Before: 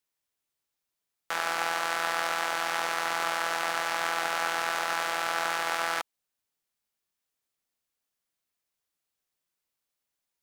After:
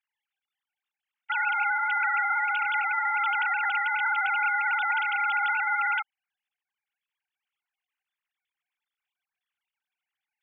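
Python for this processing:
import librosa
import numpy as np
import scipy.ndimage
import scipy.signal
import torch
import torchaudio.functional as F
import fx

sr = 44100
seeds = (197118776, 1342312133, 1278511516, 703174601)

y = fx.sine_speech(x, sr)
y = scipy.signal.sosfilt(scipy.signal.butter(2, 1300.0, 'highpass', fs=sr, output='sos'), y)
y = y * librosa.db_to_amplitude(7.5)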